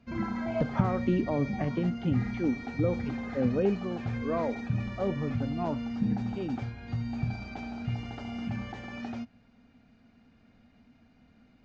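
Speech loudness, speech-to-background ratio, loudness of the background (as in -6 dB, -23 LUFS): -32.5 LUFS, 2.5 dB, -35.0 LUFS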